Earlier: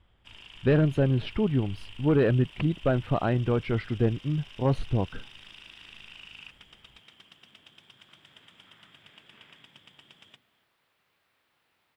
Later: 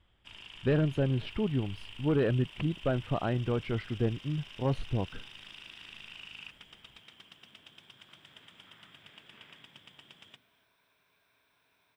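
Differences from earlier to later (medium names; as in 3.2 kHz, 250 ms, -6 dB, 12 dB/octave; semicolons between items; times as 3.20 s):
speech -5.0 dB; second sound: add rippled EQ curve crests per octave 1.6, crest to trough 9 dB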